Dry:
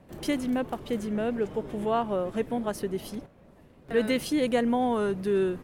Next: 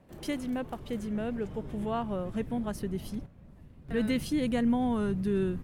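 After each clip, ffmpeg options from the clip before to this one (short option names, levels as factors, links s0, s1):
-af "asubboost=boost=5.5:cutoff=200,volume=0.562"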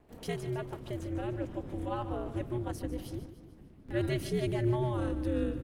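-af "aeval=exprs='val(0)*sin(2*PI*120*n/s)':c=same,aecho=1:1:148|296|444|592|740:0.224|0.116|0.0605|0.0315|0.0164"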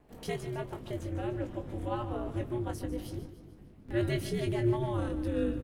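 -filter_complex "[0:a]asplit=2[s0][s1];[s1]adelay=20,volume=0.447[s2];[s0][s2]amix=inputs=2:normalize=0"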